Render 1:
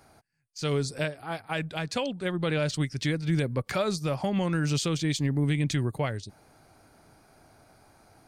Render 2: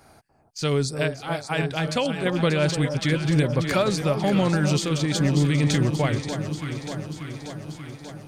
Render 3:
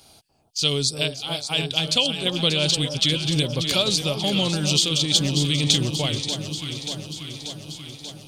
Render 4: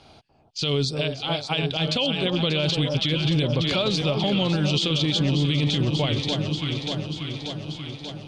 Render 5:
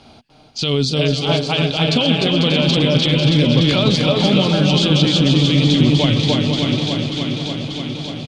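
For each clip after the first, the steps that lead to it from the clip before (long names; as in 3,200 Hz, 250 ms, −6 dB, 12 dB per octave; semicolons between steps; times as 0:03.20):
delay that swaps between a low-pass and a high-pass 293 ms, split 1,100 Hz, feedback 82%, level −7.5 dB; amplitude modulation by smooth noise, depth 50%; level +7 dB
high shelf with overshoot 2,400 Hz +10 dB, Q 3; level −3 dB
low-pass filter 2,800 Hz 12 dB per octave; brickwall limiter −19.5 dBFS, peak gain reduction 10.5 dB; level +5.5 dB
parametric band 240 Hz +10 dB 0.27 octaves; on a send: bouncing-ball delay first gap 300 ms, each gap 0.65×, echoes 5; on the sum: level +5 dB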